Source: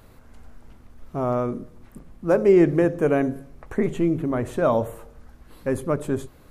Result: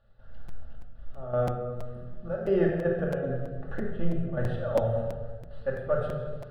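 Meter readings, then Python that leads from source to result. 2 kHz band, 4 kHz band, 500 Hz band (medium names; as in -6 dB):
-6.0 dB, no reading, -6.5 dB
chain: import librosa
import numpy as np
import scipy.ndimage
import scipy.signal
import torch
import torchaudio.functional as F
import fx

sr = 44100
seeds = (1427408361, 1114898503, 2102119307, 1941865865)

y = scipy.signal.sosfilt(scipy.signal.butter(2, 3500.0, 'lowpass', fs=sr, output='sos'), x)
y = fx.step_gate(y, sr, bpm=79, pattern='.xxx.x.x', floor_db=-12.0, edge_ms=4.5)
y = fx.fixed_phaser(y, sr, hz=1500.0, stages=8)
y = fx.room_shoebox(y, sr, seeds[0], volume_m3=1500.0, walls='mixed', distance_m=2.4)
y = fx.buffer_crackle(y, sr, first_s=0.48, period_s=0.33, block=256, kind='repeat')
y = F.gain(torch.from_numpy(y), -4.0).numpy()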